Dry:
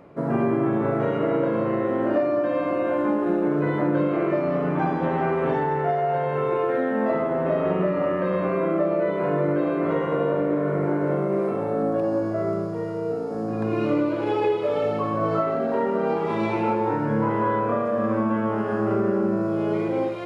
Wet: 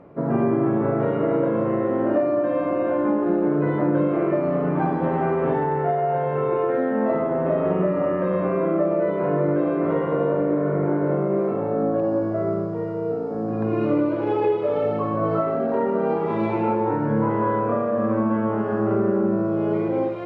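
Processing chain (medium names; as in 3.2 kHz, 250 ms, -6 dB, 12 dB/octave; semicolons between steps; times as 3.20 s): low-pass 1.3 kHz 6 dB/octave; trim +2 dB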